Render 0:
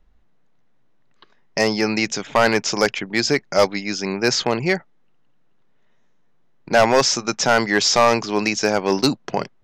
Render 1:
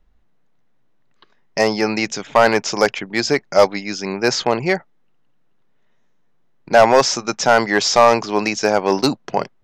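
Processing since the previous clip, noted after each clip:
dynamic equaliser 750 Hz, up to +6 dB, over −28 dBFS, Q 0.74
level −1 dB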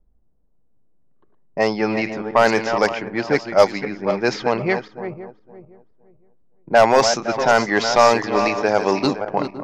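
feedback delay that plays each chunk backwards 257 ms, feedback 49%, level −8 dB
low-pass that shuts in the quiet parts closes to 580 Hz, open at −8 dBFS
level −2 dB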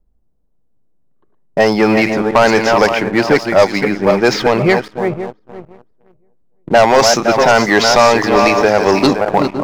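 downward compressor 2 to 1, threshold −18 dBFS, peak gain reduction 6.5 dB
leveller curve on the samples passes 2
level +4.5 dB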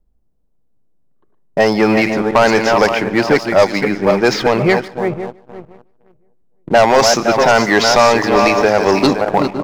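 single-tap delay 149 ms −22 dB
level −1 dB

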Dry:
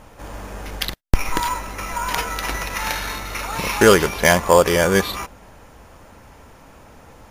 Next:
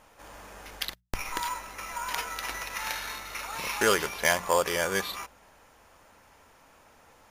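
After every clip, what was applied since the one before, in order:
low-shelf EQ 450 Hz −11.5 dB
mains-hum notches 60/120/180 Hz
level −7.5 dB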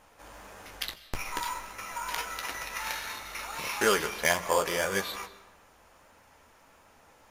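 flanger 1.6 Hz, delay 9.9 ms, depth 8.5 ms, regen −37%
convolution reverb RT60 1.0 s, pre-delay 110 ms, DRR 16 dB
level +2.5 dB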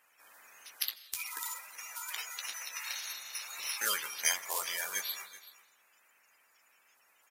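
spectral magnitudes quantised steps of 30 dB
first difference
single-tap delay 380 ms −17 dB
level +4.5 dB

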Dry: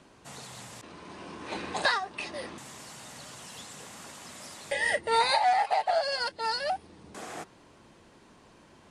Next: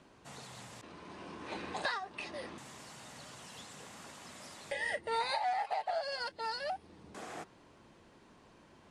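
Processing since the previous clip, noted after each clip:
high-shelf EQ 6,800 Hz −6.5 dB
downward compressor 1.5 to 1, threshold −36 dBFS, peak gain reduction 6 dB
level −4 dB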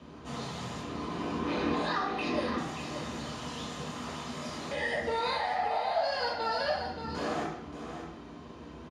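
brickwall limiter −33 dBFS, peak gain reduction 9.5 dB
single-tap delay 579 ms −9 dB
convolution reverb RT60 0.70 s, pre-delay 3 ms, DRR −6 dB
level −3 dB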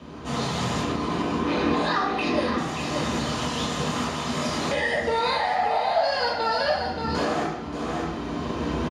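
camcorder AGC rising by 10 dB per second
repeating echo 610 ms, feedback 59%, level −22 dB
level +7 dB

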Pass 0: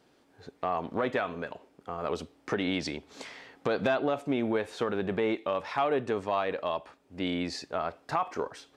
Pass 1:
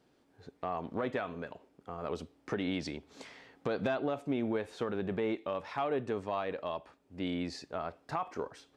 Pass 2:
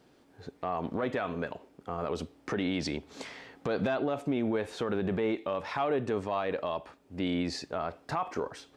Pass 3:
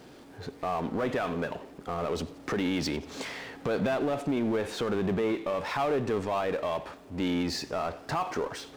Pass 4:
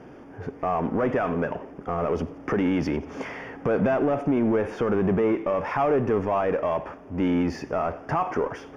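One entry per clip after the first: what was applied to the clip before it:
low-shelf EQ 360 Hz +5.5 dB; level −7 dB
brickwall limiter −28 dBFS, peak gain reduction 7 dB; level +7 dB
power curve on the samples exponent 0.7; feedback echo with a swinging delay time 88 ms, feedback 62%, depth 166 cents, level −21.5 dB
moving average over 11 samples; level +6 dB

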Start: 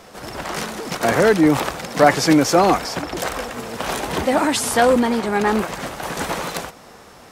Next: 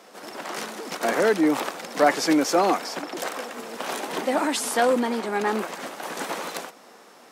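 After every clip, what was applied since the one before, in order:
high-pass filter 220 Hz 24 dB per octave
level −5.5 dB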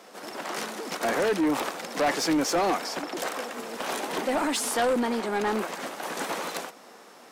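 soft clipping −19.5 dBFS, distortion −11 dB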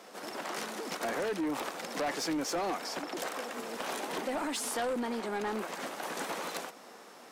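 downward compressor 2 to 1, threshold −34 dBFS, peak gain reduction 7 dB
level −2 dB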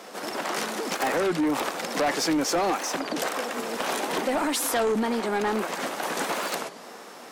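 wow of a warped record 33 1/3 rpm, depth 250 cents
level +8.5 dB

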